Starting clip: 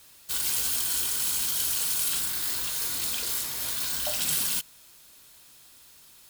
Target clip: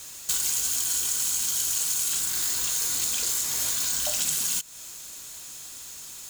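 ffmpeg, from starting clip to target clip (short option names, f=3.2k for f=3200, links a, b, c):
-af "equalizer=f=6.9k:w=2.7:g=12,acompressor=threshold=-33dB:ratio=6,volume=9dB"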